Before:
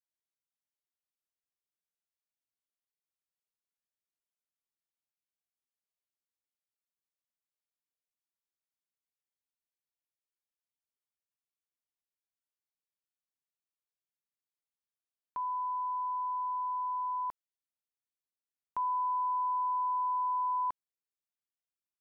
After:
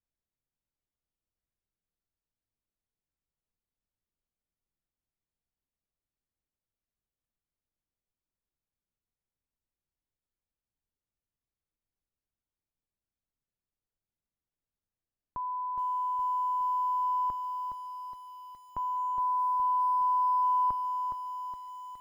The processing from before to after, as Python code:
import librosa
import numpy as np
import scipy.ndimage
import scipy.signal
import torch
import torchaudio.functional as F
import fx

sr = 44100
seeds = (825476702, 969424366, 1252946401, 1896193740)

y = fx.tilt_eq(x, sr, slope=-4.5)
y = fx.echo_crushed(y, sr, ms=416, feedback_pct=55, bits=10, wet_db=-7.0)